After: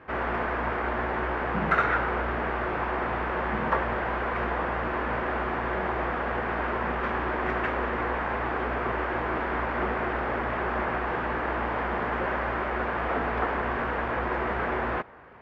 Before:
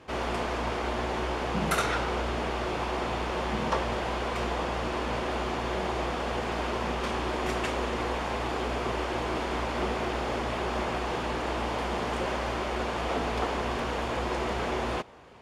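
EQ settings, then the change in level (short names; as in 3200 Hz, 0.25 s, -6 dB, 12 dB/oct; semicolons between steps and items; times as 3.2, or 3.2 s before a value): synth low-pass 1700 Hz, resonance Q 2.3; 0.0 dB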